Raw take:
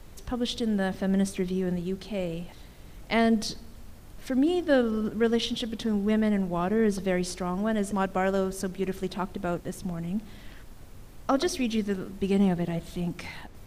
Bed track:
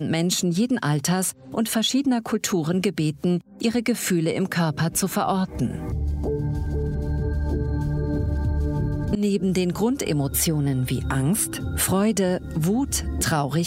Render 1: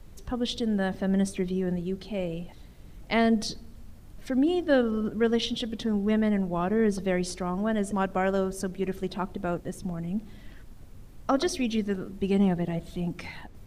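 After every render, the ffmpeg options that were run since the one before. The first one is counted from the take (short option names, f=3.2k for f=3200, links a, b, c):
-af "afftdn=nr=6:nf=-47"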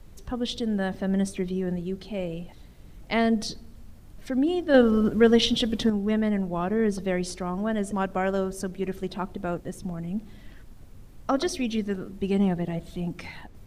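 -filter_complex "[0:a]asettb=1/sr,asplit=3[a][b][c];[a]atrim=end=4.744[d];[b]atrim=start=4.74:end=5.9,asetpts=PTS-STARTPTS,afade=t=in:d=0.004:c=qsin,afade=t=out:st=1.156:d=0.004:c=qsin,acontrast=71[e];[c]atrim=start=5.896[f];[d][e]acrossfade=d=0.004:c1=hsin:c2=qsin[g];[g][f]acrossfade=d=0.004:c1=qsin:c2=hsin"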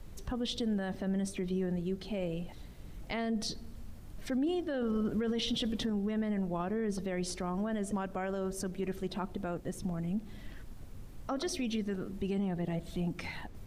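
-af "acompressor=threshold=-36dB:ratio=1.5,alimiter=level_in=1.5dB:limit=-24dB:level=0:latency=1:release=16,volume=-1.5dB"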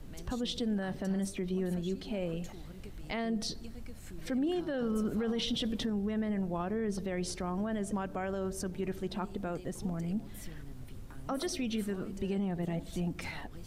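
-filter_complex "[1:a]volume=-28.5dB[a];[0:a][a]amix=inputs=2:normalize=0"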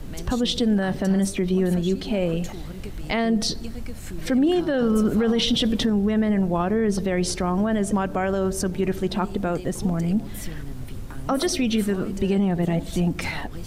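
-af "volume=12dB"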